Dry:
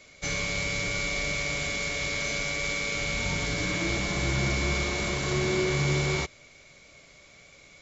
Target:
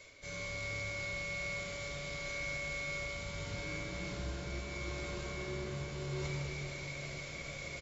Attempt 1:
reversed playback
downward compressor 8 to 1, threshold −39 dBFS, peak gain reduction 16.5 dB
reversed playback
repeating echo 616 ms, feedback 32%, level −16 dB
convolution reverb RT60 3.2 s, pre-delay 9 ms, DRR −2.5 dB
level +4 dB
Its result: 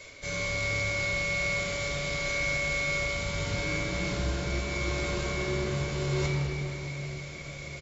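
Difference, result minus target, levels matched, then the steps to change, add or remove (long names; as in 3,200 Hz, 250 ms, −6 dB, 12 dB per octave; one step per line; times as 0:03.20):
downward compressor: peak gain reduction −10 dB
change: downward compressor 8 to 1, threshold −50.5 dBFS, peak gain reduction 26.5 dB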